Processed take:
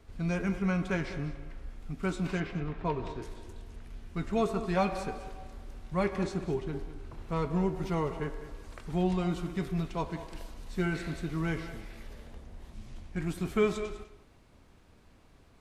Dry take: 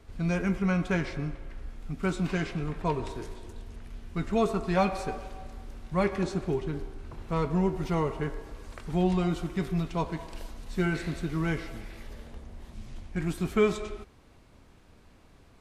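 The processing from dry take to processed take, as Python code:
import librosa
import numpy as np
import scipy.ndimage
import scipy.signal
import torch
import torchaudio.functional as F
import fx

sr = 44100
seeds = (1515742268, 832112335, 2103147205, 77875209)

y = fx.lowpass(x, sr, hz=fx.line((2.39, 3100.0), (3.21, 4900.0)), slope=12, at=(2.39, 3.21), fade=0.02)
y = y + 10.0 ** (-14.0 / 20.0) * np.pad(y, (int(201 * sr / 1000.0), 0))[:len(y)]
y = y * 10.0 ** (-3.0 / 20.0)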